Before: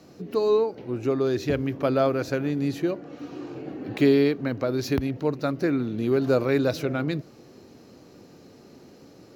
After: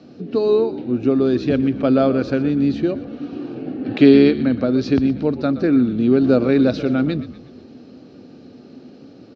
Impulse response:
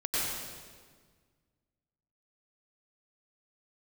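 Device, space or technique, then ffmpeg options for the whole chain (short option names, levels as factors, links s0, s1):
frequency-shifting delay pedal into a guitar cabinet: -filter_complex "[0:a]asettb=1/sr,asplit=3[s0][s1][s2];[s0]atrim=end=3.854[s3];[s1]atrim=start=3.85:end=4.31,asetpts=PTS-STARTPTS,afade=t=in:d=0.004:c=qsin,afade=t=out:st=0.456:d=0.004:c=qsin,equalizer=f=2000:w=0.32:g=4.5[s4];[s2]atrim=start=4.306[s5];[s3][s4]acrossfade=d=0.004:c1=hsin:c2=qsin[s6];[s6][s5]acrossfade=d=0.004:c1=qsin:c2=hsin,asplit=6[s7][s8][s9][s10][s11][s12];[s8]adelay=121,afreqshift=-64,volume=0.188[s13];[s9]adelay=242,afreqshift=-128,volume=0.0923[s14];[s10]adelay=363,afreqshift=-192,volume=0.0452[s15];[s11]adelay=484,afreqshift=-256,volume=0.0221[s16];[s12]adelay=605,afreqshift=-320,volume=0.0108[s17];[s7][s13][s14][s15][s16][s17]amix=inputs=6:normalize=0,highpass=76,equalizer=f=250:t=q:w=4:g=9,equalizer=f=1000:t=q:w=4:g=-8,equalizer=f=2000:t=q:w=4:g=-6,lowpass=f=4600:w=0.5412,lowpass=f=4600:w=1.3066,volume=1.68"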